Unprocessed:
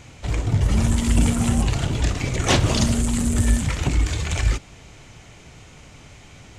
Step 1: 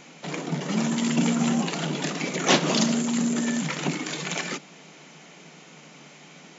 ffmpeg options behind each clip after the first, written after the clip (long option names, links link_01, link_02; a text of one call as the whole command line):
ffmpeg -i in.wav -af "afftfilt=real='re*between(b*sr/4096,150,7500)':imag='im*between(b*sr/4096,150,7500)':win_size=4096:overlap=0.75" out.wav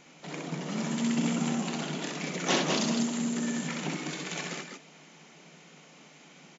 ffmpeg -i in.wav -af "aecho=1:1:64.14|198.3:0.631|0.562,volume=-8dB" out.wav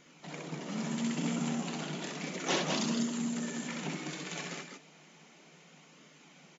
ffmpeg -i in.wav -af "flanger=delay=0.6:depth=6.6:regen=-60:speed=0.33:shape=sinusoidal" out.wav